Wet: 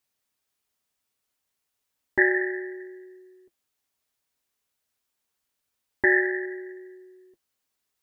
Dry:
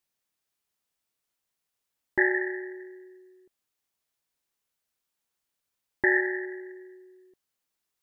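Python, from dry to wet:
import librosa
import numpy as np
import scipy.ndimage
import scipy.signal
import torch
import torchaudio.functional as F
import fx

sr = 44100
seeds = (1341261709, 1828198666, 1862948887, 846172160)

y = fx.notch_comb(x, sr, f0_hz=170.0)
y = y * librosa.db_to_amplitude(4.0)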